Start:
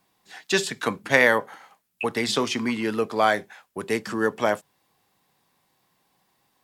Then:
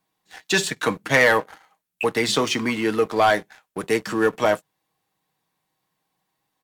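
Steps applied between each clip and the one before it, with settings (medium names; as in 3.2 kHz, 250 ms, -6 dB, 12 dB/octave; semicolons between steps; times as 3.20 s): band-stop 5 kHz, Q 19; comb 6.4 ms, depth 33%; waveshaping leveller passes 2; trim -4 dB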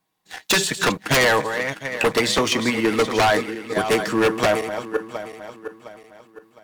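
backward echo that repeats 355 ms, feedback 58%, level -10.5 dB; transient shaper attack +9 dB, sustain +5 dB; wavefolder -11 dBFS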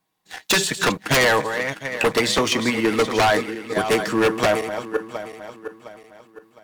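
no audible change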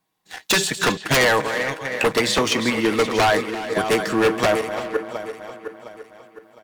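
speakerphone echo 340 ms, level -8 dB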